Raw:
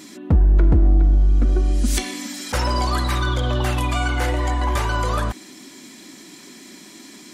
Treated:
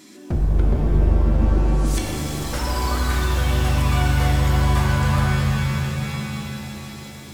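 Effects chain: one-sided wavefolder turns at -13.5 dBFS; pitch-shifted reverb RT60 3.7 s, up +7 st, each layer -2 dB, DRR 0.5 dB; trim -6 dB

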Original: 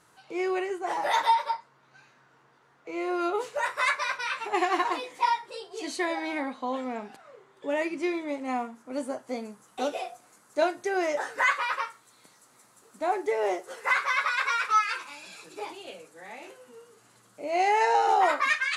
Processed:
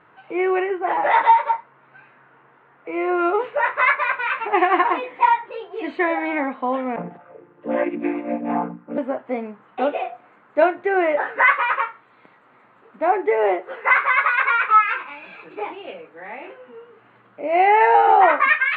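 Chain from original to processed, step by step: 6.96–8.98 s: vocoder on a held chord major triad, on A#2; inverse Chebyshev low-pass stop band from 5.1 kHz, stop band 40 dB; bass shelf 130 Hz -7.5 dB; trim +9 dB

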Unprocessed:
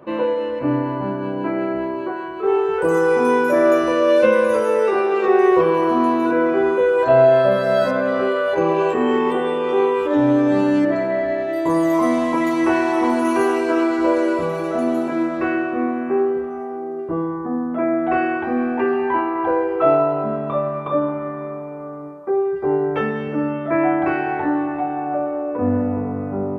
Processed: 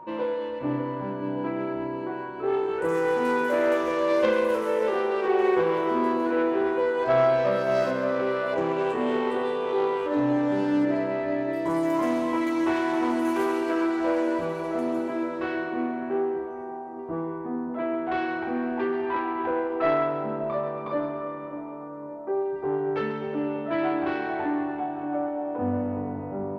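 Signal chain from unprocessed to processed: self-modulated delay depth 0.2 ms; whistle 940 Hz -33 dBFS; two-band feedback delay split 900 Hz, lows 582 ms, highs 135 ms, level -9.5 dB; trim -8 dB

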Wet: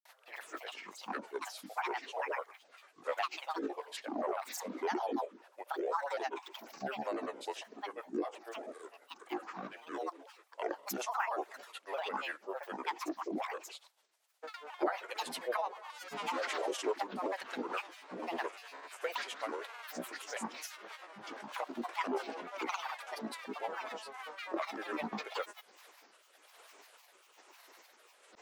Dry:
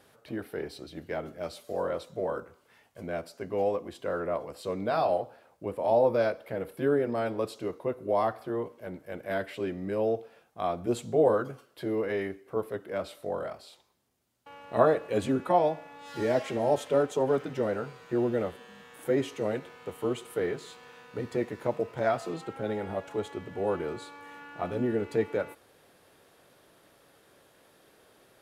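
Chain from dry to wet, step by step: sawtooth pitch modulation -4 st, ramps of 444 ms; high-pass 660 Hz 24 dB/octave; compression 3:1, threshold -38 dBFS, peak gain reduction 12.5 dB; rotary cabinet horn 6 Hz, later 1.1 Hz, at 24.88 s; granulator, grains 20 per s, pitch spread up and down by 12 st; trim +8.5 dB

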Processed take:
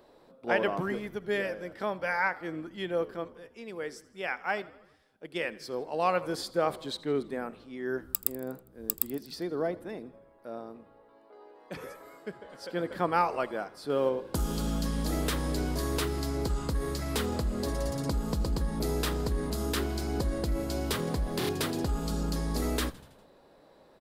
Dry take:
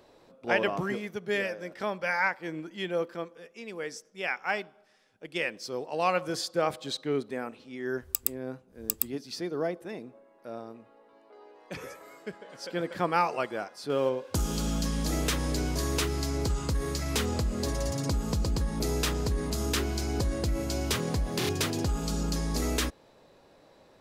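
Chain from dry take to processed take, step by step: fifteen-band graphic EQ 100 Hz -7 dB, 2.5 kHz -5 dB, 6.3 kHz -8 dB; frequency-shifting echo 81 ms, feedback 61%, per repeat -66 Hz, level -20.5 dB

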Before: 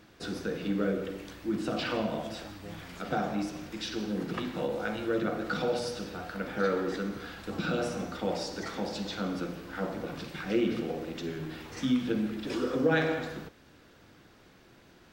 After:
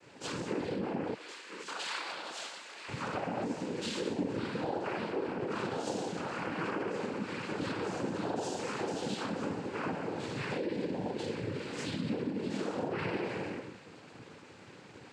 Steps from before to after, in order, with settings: reverberation, pre-delay 3 ms, DRR -9.5 dB; peak limiter -13 dBFS, peak gain reduction 8.5 dB; 1.13–2.88 s: high-pass 1.3 kHz 12 dB/octave; compression 4:1, threshold -28 dBFS, peak gain reduction 9.5 dB; noise-vocoded speech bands 8; trim -5 dB

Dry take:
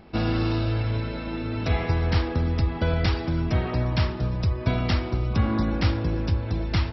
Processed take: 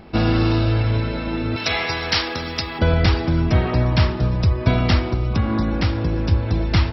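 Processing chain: 1.56–2.79 s: tilt EQ +4.5 dB/octave; 4.99–6.31 s: compression 2:1, threshold -25 dBFS, peak gain reduction 5.5 dB; trim +6.5 dB

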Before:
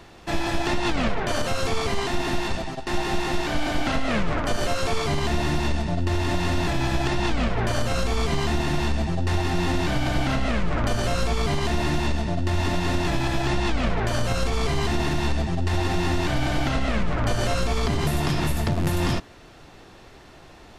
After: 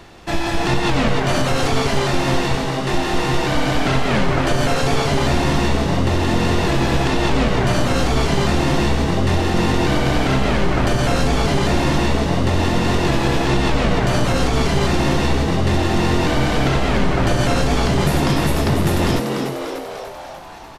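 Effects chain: on a send: frequency-shifting echo 295 ms, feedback 61%, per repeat +130 Hz, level -6 dB; on the sum: trim +4.5 dB

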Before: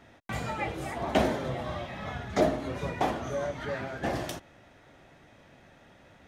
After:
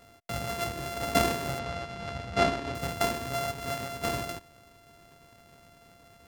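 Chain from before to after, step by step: sorted samples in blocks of 64 samples; 1.59–2.75 s: low-pass 4.8 kHz 12 dB/octave

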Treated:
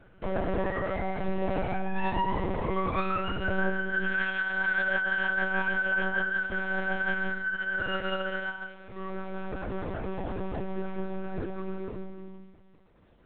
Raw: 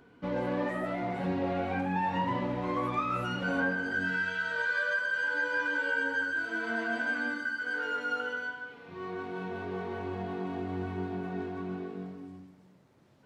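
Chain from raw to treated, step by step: monotone LPC vocoder at 8 kHz 190 Hz; trim +3 dB

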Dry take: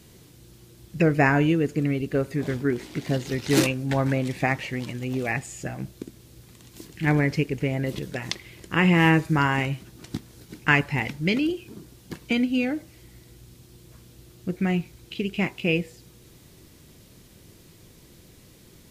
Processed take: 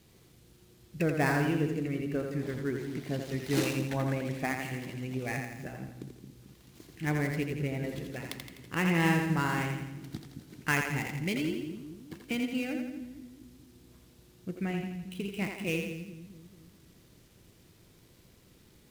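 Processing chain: dead-time distortion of 0.073 ms; two-band feedback delay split 310 Hz, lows 220 ms, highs 84 ms, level -5 dB; trim -9 dB

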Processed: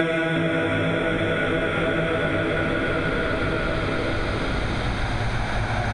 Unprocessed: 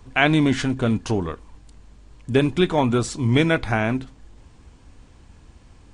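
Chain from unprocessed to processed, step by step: Paulstretch 36×, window 0.25 s, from 3.51 s; frequency-shifting echo 358 ms, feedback 52%, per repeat -62 Hz, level -4 dB; compression, threshold -24 dBFS, peak gain reduction 11 dB; trim +4 dB

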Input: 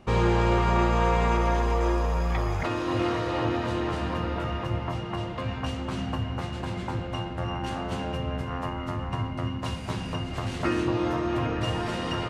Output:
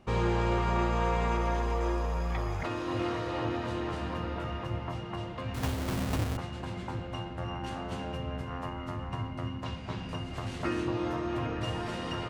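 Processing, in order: 5.54–6.37 s: square wave that keeps the level; 9.64–10.09 s: low-pass 4.8 kHz 12 dB/octave; trim -5.5 dB

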